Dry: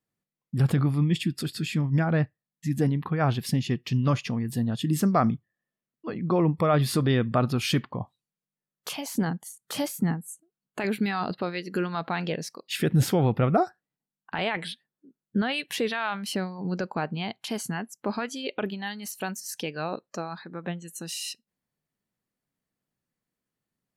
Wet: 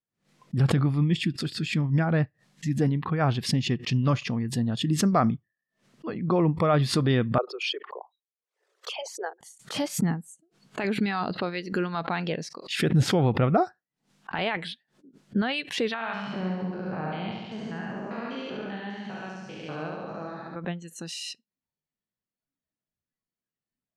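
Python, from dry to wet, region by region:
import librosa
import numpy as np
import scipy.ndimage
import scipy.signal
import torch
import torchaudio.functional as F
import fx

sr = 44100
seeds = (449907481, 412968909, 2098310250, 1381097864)

y = fx.chain(x, sr, fx.envelope_sharpen(power=2.0),
    fx.steep_highpass(hz=390.0, slope=72),
    fx.peak_eq(hz=11000.0, db=-3.5, octaves=0.25), at=(7.38, 9.41))
y = fx.chain(y, sr, fx.spec_steps(hold_ms=200),
    fx.lowpass(hz=2900.0, slope=12),
    fx.room_flutter(wall_m=12.0, rt60_s=1.2), at=(15.94, 20.56))
y = fx.noise_reduce_blind(y, sr, reduce_db=10)
y = scipy.signal.sosfilt(scipy.signal.butter(2, 6400.0, 'lowpass', fs=sr, output='sos'), y)
y = fx.pre_swell(y, sr, db_per_s=150.0)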